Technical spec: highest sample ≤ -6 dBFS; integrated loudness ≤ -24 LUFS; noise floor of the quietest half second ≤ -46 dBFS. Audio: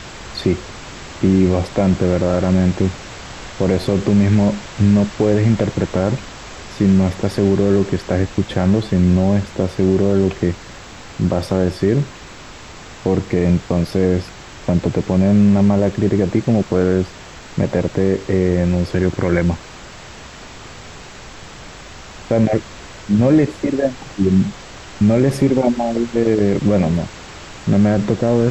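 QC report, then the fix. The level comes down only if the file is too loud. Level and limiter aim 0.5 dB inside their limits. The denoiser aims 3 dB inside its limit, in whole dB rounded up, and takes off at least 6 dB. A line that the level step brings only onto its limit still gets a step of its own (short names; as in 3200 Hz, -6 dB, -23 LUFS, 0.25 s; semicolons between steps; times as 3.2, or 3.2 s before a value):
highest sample -4.0 dBFS: fail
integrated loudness -17.0 LUFS: fail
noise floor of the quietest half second -36 dBFS: fail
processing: denoiser 6 dB, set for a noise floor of -36 dBFS; gain -7.5 dB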